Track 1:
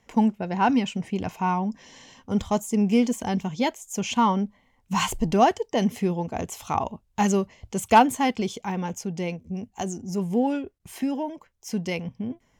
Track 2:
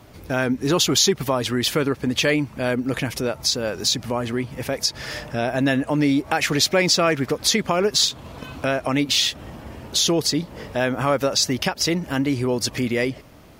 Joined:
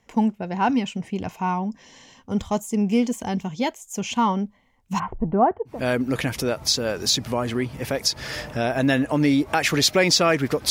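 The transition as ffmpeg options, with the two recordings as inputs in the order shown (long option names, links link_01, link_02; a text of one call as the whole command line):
ffmpeg -i cue0.wav -i cue1.wav -filter_complex "[0:a]asplit=3[link_01][link_02][link_03];[link_01]afade=type=out:start_time=4.98:duration=0.02[link_04];[link_02]lowpass=frequency=1400:width=0.5412,lowpass=frequency=1400:width=1.3066,afade=type=in:start_time=4.98:duration=0.02,afade=type=out:start_time=5.81:duration=0.02[link_05];[link_03]afade=type=in:start_time=5.81:duration=0.02[link_06];[link_04][link_05][link_06]amix=inputs=3:normalize=0,apad=whole_dur=10.7,atrim=end=10.7,atrim=end=5.81,asetpts=PTS-STARTPTS[link_07];[1:a]atrim=start=2.43:end=7.48,asetpts=PTS-STARTPTS[link_08];[link_07][link_08]acrossfade=duration=0.16:curve1=tri:curve2=tri" out.wav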